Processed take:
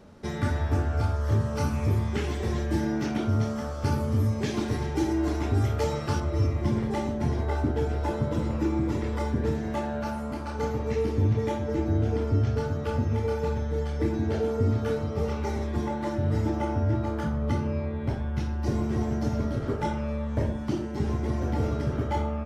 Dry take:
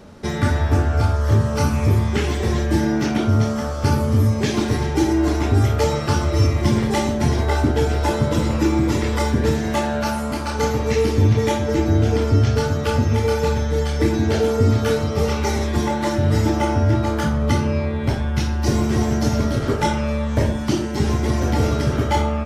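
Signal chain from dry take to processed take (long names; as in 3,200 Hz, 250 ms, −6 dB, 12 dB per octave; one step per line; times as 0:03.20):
high-shelf EQ 2,100 Hz −3 dB, from 0:06.20 −10.5 dB
level −8 dB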